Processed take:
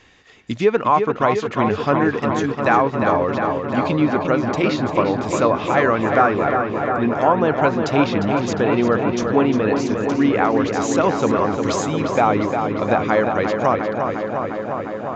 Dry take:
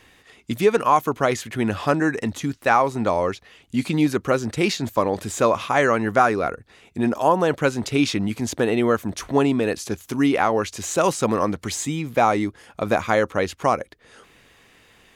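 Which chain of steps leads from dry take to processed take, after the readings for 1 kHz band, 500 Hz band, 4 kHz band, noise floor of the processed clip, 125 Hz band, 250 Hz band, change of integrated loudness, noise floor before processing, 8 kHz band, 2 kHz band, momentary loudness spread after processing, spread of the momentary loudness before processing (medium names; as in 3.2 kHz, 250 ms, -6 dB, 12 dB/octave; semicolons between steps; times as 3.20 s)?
+3.5 dB, +3.5 dB, -1.0 dB, -30 dBFS, +3.5 dB, +3.5 dB, +3.0 dB, -55 dBFS, -3.5 dB, +2.5 dB, 4 LU, 8 LU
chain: low-pass that closes with the level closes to 2.9 kHz, closed at -16.5 dBFS; resampled via 16 kHz; filtered feedback delay 353 ms, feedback 84%, low-pass 4 kHz, level -6 dB; trim +1 dB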